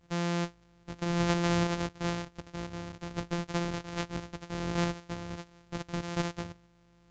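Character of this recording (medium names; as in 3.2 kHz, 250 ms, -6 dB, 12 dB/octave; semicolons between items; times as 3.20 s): a buzz of ramps at a fixed pitch in blocks of 256 samples; tremolo saw up 1.2 Hz, depth 35%; µ-law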